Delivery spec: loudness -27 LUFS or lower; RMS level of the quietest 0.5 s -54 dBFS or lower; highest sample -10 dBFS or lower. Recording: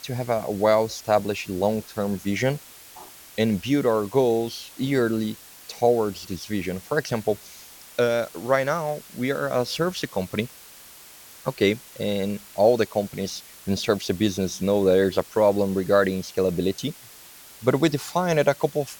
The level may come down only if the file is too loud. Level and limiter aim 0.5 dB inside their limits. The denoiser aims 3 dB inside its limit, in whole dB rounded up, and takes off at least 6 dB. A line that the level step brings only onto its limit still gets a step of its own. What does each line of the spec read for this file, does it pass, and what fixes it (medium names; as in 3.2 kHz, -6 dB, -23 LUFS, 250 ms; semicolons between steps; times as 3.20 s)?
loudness -24.0 LUFS: fail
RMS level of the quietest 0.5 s -46 dBFS: fail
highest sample -6.5 dBFS: fail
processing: noise reduction 8 dB, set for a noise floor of -46 dBFS; trim -3.5 dB; peak limiter -10.5 dBFS